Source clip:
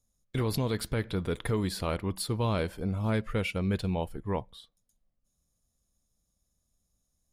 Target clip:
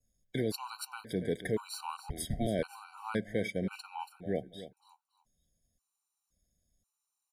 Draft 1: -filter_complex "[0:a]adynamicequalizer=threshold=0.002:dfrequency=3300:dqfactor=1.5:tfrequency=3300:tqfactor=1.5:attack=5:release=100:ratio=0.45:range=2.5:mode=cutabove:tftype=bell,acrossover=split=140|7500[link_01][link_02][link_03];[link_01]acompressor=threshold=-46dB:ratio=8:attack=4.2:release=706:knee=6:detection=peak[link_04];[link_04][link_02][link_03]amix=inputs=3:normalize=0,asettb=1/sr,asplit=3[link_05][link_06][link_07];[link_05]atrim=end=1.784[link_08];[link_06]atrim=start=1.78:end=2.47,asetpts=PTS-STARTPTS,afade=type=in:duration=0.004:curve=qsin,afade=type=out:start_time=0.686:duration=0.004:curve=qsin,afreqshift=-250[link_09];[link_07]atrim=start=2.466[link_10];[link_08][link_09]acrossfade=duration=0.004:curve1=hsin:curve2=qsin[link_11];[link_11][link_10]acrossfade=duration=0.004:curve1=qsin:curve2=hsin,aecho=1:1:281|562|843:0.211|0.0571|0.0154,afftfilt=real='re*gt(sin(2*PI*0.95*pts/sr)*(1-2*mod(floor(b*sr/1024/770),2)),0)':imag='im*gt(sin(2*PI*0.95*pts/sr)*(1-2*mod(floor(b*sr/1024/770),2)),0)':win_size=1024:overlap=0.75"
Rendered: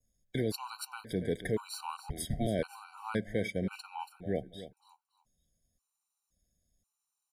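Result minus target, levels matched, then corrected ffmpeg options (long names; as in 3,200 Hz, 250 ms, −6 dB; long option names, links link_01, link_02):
downward compressor: peak gain reduction −10.5 dB
-filter_complex "[0:a]adynamicequalizer=threshold=0.002:dfrequency=3300:dqfactor=1.5:tfrequency=3300:tqfactor=1.5:attack=5:release=100:ratio=0.45:range=2.5:mode=cutabove:tftype=bell,acrossover=split=140|7500[link_01][link_02][link_03];[link_01]acompressor=threshold=-58dB:ratio=8:attack=4.2:release=706:knee=6:detection=peak[link_04];[link_04][link_02][link_03]amix=inputs=3:normalize=0,asettb=1/sr,asplit=3[link_05][link_06][link_07];[link_05]atrim=end=1.784[link_08];[link_06]atrim=start=1.78:end=2.47,asetpts=PTS-STARTPTS,afade=type=in:duration=0.004:curve=qsin,afade=type=out:start_time=0.686:duration=0.004:curve=qsin,afreqshift=-250[link_09];[link_07]atrim=start=2.466[link_10];[link_08][link_09]acrossfade=duration=0.004:curve1=hsin:curve2=qsin[link_11];[link_11][link_10]acrossfade=duration=0.004:curve1=qsin:curve2=hsin,aecho=1:1:281|562|843:0.211|0.0571|0.0154,afftfilt=real='re*gt(sin(2*PI*0.95*pts/sr)*(1-2*mod(floor(b*sr/1024/770),2)),0)':imag='im*gt(sin(2*PI*0.95*pts/sr)*(1-2*mod(floor(b*sr/1024/770),2)),0)':win_size=1024:overlap=0.75"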